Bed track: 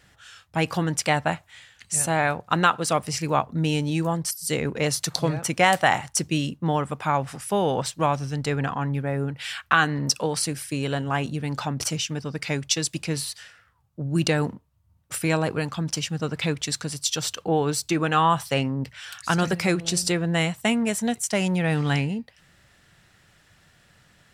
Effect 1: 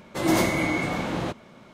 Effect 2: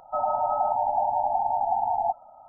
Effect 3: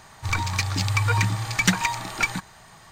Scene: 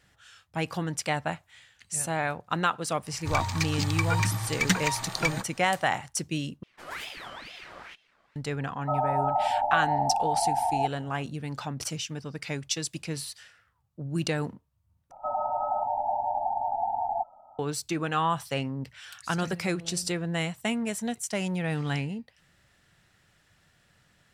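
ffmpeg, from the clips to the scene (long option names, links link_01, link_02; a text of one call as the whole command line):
ffmpeg -i bed.wav -i cue0.wav -i cue1.wav -i cue2.wav -filter_complex "[2:a]asplit=2[link_01][link_02];[0:a]volume=-6.5dB[link_03];[1:a]aeval=exprs='val(0)*sin(2*PI*1900*n/s+1900*0.55/2.2*sin(2*PI*2.2*n/s))':channel_layout=same[link_04];[link_02]acompressor=mode=upward:threshold=-37dB:ratio=4:attack=2.9:release=874:knee=2.83:detection=peak[link_05];[link_03]asplit=3[link_06][link_07][link_08];[link_06]atrim=end=6.634[link_09];[link_04]atrim=end=1.73,asetpts=PTS-STARTPTS,volume=-14.5dB[link_10];[link_07]atrim=start=8.356:end=15.114[link_11];[link_05]atrim=end=2.48,asetpts=PTS-STARTPTS,volume=-4dB[link_12];[link_08]atrim=start=17.586[link_13];[3:a]atrim=end=2.91,asetpts=PTS-STARTPTS,volume=-4.5dB,afade=type=in:duration=0.1,afade=type=out:start_time=2.81:duration=0.1,adelay=3020[link_14];[link_01]atrim=end=2.48,asetpts=PTS-STARTPTS,volume=-1.5dB,afade=type=in:duration=0.004:curve=hsin,afade=type=out:start_time=2.476:duration=0.004:curve=hsin,adelay=8750[link_15];[link_09][link_10]acrossfade=duration=0.004:curve1=hsin:curve2=hsin[link_16];[link_16][link_11]acrossfade=duration=0.004:curve1=hsin:curve2=hsin[link_17];[link_17][link_12]acrossfade=duration=0.004:curve1=hsin:curve2=hsin[link_18];[link_18][link_13]acrossfade=duration=0.004:curve1=hsin:curve2=hsin[link_19];[link_19][link_14][link_15]amix=inputs=3:normalize=0" out.wav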